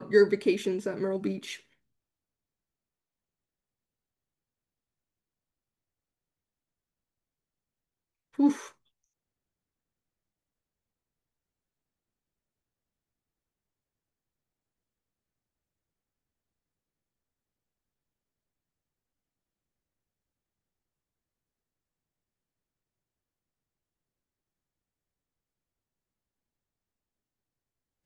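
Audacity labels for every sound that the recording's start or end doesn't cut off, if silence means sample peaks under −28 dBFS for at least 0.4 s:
8.390000	8.520000	sound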